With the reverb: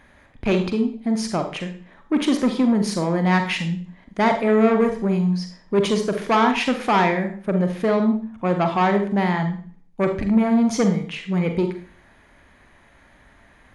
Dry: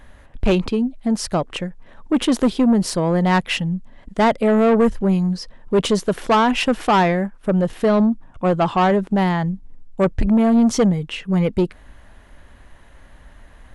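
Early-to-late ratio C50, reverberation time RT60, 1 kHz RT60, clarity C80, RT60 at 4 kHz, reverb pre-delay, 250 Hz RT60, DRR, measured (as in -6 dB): 8.5 dB, 0.45 s, 0.45 s, 13.0 dB, 0.40 s, 40 ms, 0.50 s, 6.0 dB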